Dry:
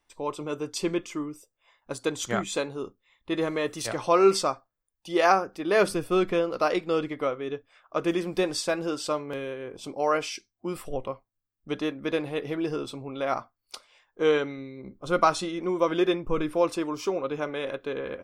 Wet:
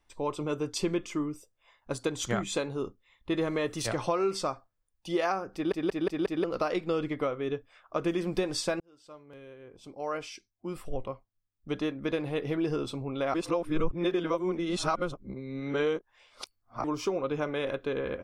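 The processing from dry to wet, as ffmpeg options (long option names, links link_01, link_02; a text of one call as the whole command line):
ffmpeg -i in.wav -filter_complex "[0:a]asplit=9[link_01][link_02][link_03][link_04][link_05][link_06][link_07][link_08][link_09];[link_01]atrim=end=5.722[link_10];[link_02]atrim=start=5.538:end=5.722[link_11];[link_03]atrim=start=5.538:end=5.722[link_12];[link_04]atrim=start=5.538:end=5.722[link_13];[link_05]atrim=start=5.538:end=5.722[link_14];[link_06]atrim=start=6.438:end=8.8,asetpts=PTS-STARTPTS,afade=type=out:start_time=2.358:duration=0.004:curve=hsin[link_15];[link_07]atrim=start=8.8:end=13.342,asetpts=PTS-STARTPTS,afade=type=in:duration=3.88[link_16];[link_08]atrim=start=13.338:end=16.842,asetpts=PTS-STARTPTS,areverse[link_17];[link_09]atrim=start=16.838[link_18];[link_10][link_11]acrossfade=duration=0.004:curve1=hsin:curve2=hsin[link_19];[link_19][link_12]acrossfade=duration=0.004:curve1=hsin:curve2=hsin[link_20];[link_20][link_13]acrossfade=duration=0.004:curve1=hsin:curve2=hsin[link_21];[link_21][link_14]acrossfade=duration=0.004:curve1=hsin:curve2=hsin[link_22];[link_15][link_16]concat=n=2:v=0:a=1[link_23];[link_22][link_23]acrossfade=duration=0.004:curve1=hsin:curve2=hsin[link_24];[link_24][link_17]acrossfade=duration=0.004:curve1=hsin:curve2=hsin[link_25];[link_25][link_18]acrossfade=duration=0.004:curve1=hsin:curve2=hsin,highshelf=frequency=9900:gain=-5.5,acompressor=threshold=-26dB:ratio=6,lowshelf=frequency=140:gain=9" out.wav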